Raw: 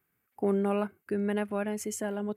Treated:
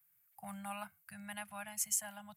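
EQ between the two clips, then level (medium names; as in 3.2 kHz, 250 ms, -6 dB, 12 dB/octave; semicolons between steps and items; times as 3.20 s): elliptic band-stop 170–730 Hz, stop band 60 dB; pre-emphasis filter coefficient 0.8; +5.0 dB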